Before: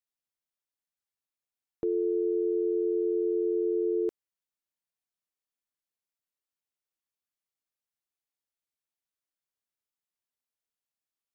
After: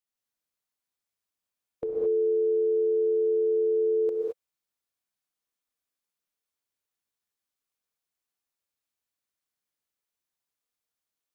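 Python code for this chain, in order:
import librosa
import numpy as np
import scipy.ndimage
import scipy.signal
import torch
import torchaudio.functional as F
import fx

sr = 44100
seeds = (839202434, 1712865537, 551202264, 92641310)

y = fx.formant_shift(x, sr, semitones=3)
y = fx.rev_gated(y, sr, seeds[0], gate_ms=240, shape='rising', drr_db=-1.5)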